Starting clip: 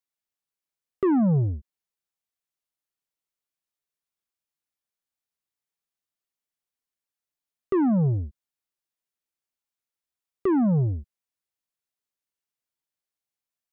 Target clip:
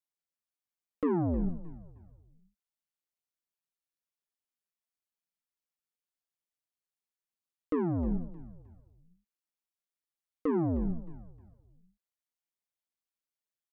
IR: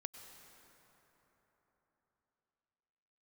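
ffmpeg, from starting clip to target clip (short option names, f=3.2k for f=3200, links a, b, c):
-filter_complex "[0:a]asplit=4[a][b][c][d];[b]adelay=310,afreqshift=-64,volume=-16dB[e];[c]adelay=620,afreqshift=-128,volume=-24.6dB[f];[d]adelay=930,afreqshift=-192,volume=-33.3dB[g];[a][e][f][g]amix=inputs=4:normalize=0,aeval=exprs='val(0)*sin(2*PI*84*n/s)':c=same,flanger=delay=2.8:depth=3.2:regen=52:speed=1.8:shape=triangular"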